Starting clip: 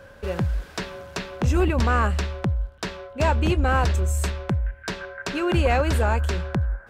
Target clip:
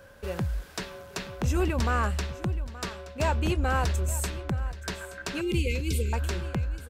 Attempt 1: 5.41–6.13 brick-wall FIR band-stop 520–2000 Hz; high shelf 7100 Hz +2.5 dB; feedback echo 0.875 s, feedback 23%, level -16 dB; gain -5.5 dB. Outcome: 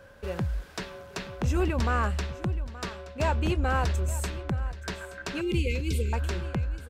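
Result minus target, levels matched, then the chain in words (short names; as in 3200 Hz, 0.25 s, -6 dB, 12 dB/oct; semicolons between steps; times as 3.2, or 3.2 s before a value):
8000 Hz band -4.0 dB
5.41–6.13 brick-wall FIR band-stop 520–2000 Hz; high shelf 7100 Hz +10.5 dB; feedback echo 0.875 s, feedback 23%, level -16 dB; gain -5.5 dB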